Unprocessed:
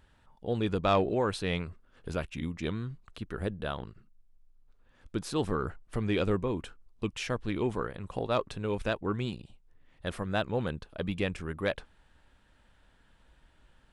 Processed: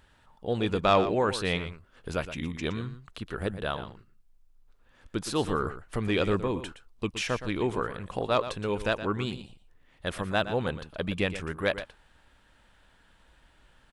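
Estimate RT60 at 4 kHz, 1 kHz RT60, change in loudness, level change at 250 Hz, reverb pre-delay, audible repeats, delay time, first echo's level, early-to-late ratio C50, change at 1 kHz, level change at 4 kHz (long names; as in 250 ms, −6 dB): no reverb audible, no reverb audible, +3.0 dB, +1.5 dB, no reverb audible, 1, 118 ms, −12.0 dB, no reverb audible, +4.5 dB, +5.0 dB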